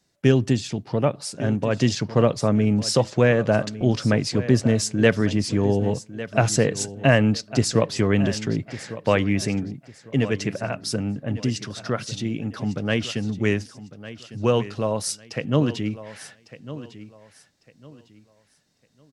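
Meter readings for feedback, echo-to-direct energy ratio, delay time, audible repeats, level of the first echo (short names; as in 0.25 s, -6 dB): 28%, -14.5 dB, 1.152 s, 2, -15.0 dB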